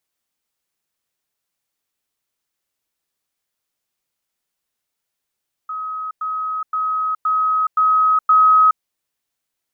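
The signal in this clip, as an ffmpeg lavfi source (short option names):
-f lavfi -i "aevalsrc='pow(10,(-23.5+3*floor(t/0.52))/20)*sin(2*PI*1270*t)*clip(min(mod(t,0.52),0.42-mod(t,0.52))/0.005,0,1)':d=3.12:s=44100"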